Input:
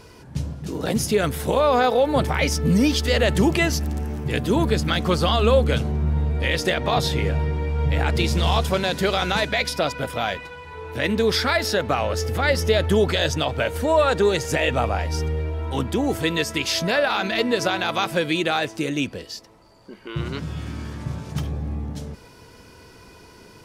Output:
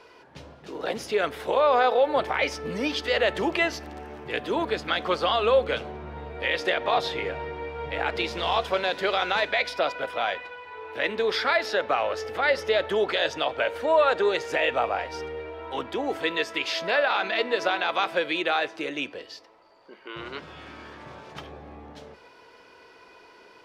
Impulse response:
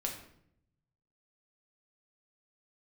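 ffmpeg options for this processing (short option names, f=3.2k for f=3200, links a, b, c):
-filter_complex "[0:a]acrossover=split=360 4200:gain=0.0708 1 0.126[a][b][c];[a][b][c]amix=inputs=3:normalize=0,asplit=2[d][e];[1:a]atrim=start_sample=2205,lowshelf=f=110:g=10[f];[e][f]afir=irnorm=-1:irlink=0,volume=-17.5dB[g];[d][g]amix=inputs=2:normalize=0,volume=-2dB"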